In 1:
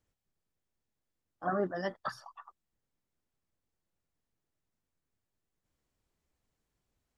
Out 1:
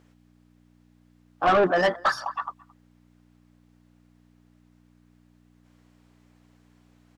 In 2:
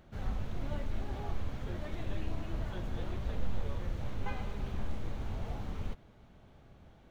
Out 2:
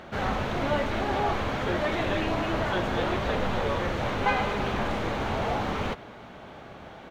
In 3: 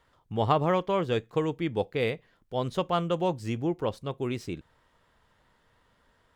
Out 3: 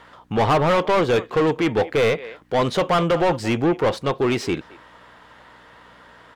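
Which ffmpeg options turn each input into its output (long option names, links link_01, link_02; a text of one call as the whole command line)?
ffmpeg -i in.wav -filter_complex "[0:a]aeval=exprs='val(0)+0.000562*(sin(2*PI*60*n/s)+sin(2*PI*2*60*n/s)/2+sin(2*PI*3*60*n/s)/3+sin(2*PI*4*60*n/s)/4+sin(2*PI*5*60*n/s)/5)':channel_layout=same,asplit=2[link_01][link_02];[link_02]adelay=220,highpass=300,lowpass=3400,asoftclip=type=hard:threshold=-19dB,volume=-25dB[link_03];[link_01][link_03]amix=inputs=2:normalize=0,asplit=2[link_04][link_05];[link_05]highpass=frequency=720:poles=1,volume=29dB,asoftclip=type=tanh:threshold=-9.5dB[link_06];[link_04][link_06]amix=inputs=2:normalize=0,lowpass=frequency=2300:poles=1,volume=-6dB" out.wav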